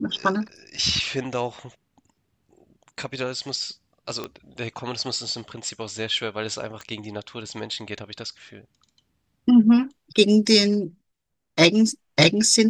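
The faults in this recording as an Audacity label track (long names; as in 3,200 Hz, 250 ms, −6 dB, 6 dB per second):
4.240000	4.240000	click −16 dBFS
6.810000	6.810000	click −22 dBFS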